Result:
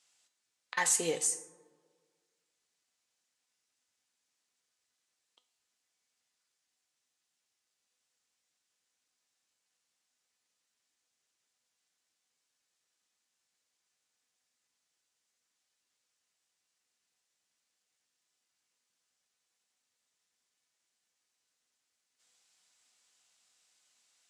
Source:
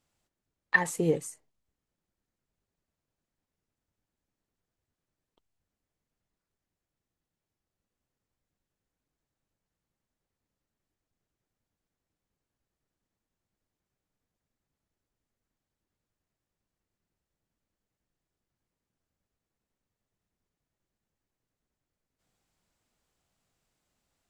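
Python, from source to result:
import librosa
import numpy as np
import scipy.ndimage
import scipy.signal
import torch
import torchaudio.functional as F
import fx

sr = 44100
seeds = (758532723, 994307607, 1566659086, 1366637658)

y = fx.weighting(x, sr, curve='ITU-R 468')
y = fx.over_compress(y, sr, threshold_db=-26.0, ratio=-0.5)
y = fx.comb_fb(y, sr, f0_hz=250.0, decay_s=0.42, harmonics='all', damping=0.0, mix_pct=70)
y = fx.rev_plate(y, sr, seeds[0], rt60_s=1.7, hf_ratio=0.35, predelay_ms=0, drr_db=14.5)
y = y * librosa.db_to_amplitude(6.5)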